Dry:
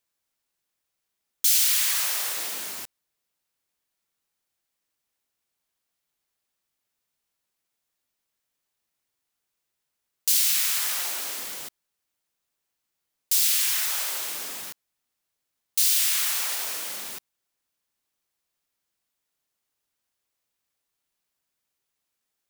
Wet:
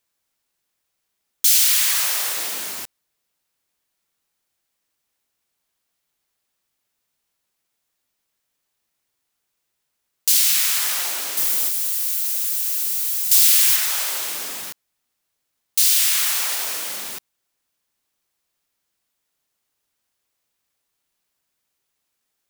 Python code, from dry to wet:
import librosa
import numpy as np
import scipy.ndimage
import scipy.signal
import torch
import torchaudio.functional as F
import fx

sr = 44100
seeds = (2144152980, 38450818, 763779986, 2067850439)

y = fx.crossing_spikes(x, sr, level_db=-24.0, at=(11.37, 13.76))
y = y * 10.0 ** (5.0 / 20.0)